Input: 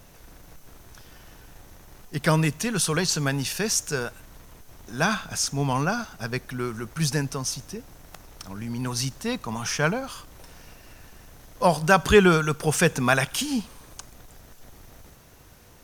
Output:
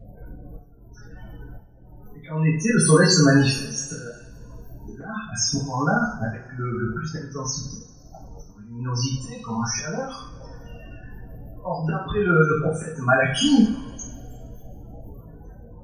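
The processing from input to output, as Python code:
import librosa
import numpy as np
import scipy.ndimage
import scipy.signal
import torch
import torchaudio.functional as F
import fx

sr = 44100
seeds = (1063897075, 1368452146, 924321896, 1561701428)

y = fx.spec_topn(x, sr, count=16)
y = fx.auto_swell(y, sr, attack_ms=665.0)
y = fx.rev_double_slope(y, sr, seeds[0], early_s=0.46, late_s=2.0, knee_db=-22, drr_db=-8.5)
y = y * 10.0 ** (3.5 / 20.0)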